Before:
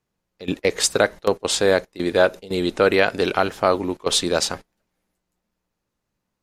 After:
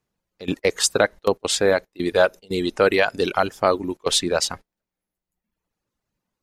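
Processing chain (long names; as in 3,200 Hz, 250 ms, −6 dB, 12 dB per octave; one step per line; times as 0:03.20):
reverb reduction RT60 1 s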